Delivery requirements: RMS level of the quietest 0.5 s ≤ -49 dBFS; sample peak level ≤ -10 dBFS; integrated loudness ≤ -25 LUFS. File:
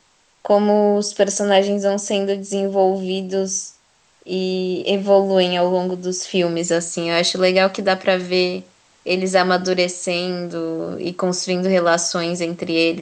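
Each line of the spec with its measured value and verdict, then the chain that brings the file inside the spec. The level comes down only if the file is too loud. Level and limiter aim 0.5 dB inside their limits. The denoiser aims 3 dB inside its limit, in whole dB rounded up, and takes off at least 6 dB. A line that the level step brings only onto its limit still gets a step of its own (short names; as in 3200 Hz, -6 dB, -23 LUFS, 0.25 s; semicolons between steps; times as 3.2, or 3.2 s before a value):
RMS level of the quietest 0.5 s -57 dBFS: OK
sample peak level -2.0 dBFS: fail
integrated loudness -19.0 LUFS: fail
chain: gain -6.5 dB; limiter -10.5 dBFS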